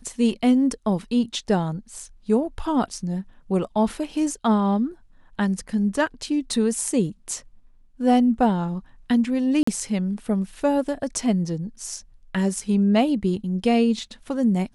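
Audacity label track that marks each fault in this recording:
9.630000	9.670000	gap 44 ms

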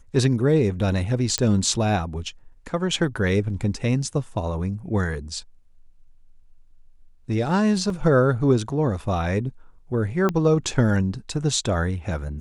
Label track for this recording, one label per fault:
1.380000	1.380000	pop -7 dBFS
7.900000	7.900000	gap 2.4 ms
10.290000	10.290000	pop -11 dBFS

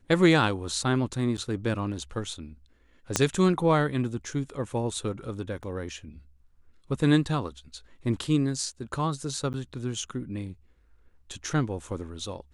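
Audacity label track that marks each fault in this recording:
1.370000	1.380000	gap 8.7 ms
3.160000	3.160000	pop -7 dBFS
5.630000	5.630000	gap 2.6 ms
9.530000	9.540000	gap 9.7 ms

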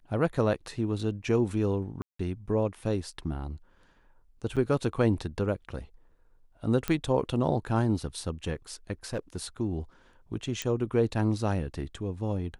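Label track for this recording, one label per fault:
2.020000	2.190000	gap 0.174 s
4.560000	4.570000	gap 6.9 ms
6.880000	6.880000	pop -14 dBFS
9.130000	9.440000	clipped -27.5 dBFS
10.620000	10.620000	pop -16 dBFS

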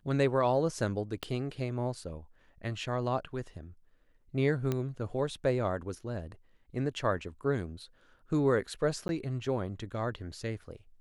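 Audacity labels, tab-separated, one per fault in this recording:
1.230000	1.230000	pop -21 dBFS
4.720000	4.720000	pop -18 dBFS
9.080000	9.090000	gap

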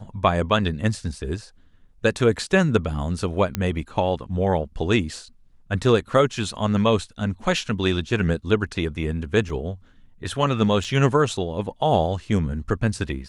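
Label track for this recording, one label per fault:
3.550000	3.550000	pop -9 dBFS
9.490000	9.490000	gap 4.4 ms
10.840000	10.840000	gap 4.9 ms

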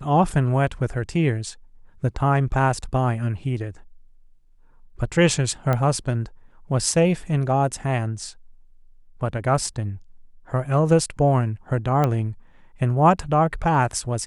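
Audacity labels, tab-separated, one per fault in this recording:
5.730000	5.730000	pop -11 dBFS
12.040000	12.040000	pop -10 dBFS

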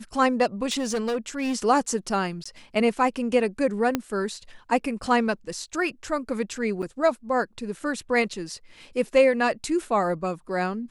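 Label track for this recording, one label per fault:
0.710000	1.560000	clipped -22 dBFS
2.440000	2.460000	gap 15 ms
3.950000	3.950000	pop -9 dBFS
6.820000	6.830000	gap 6.7 ms

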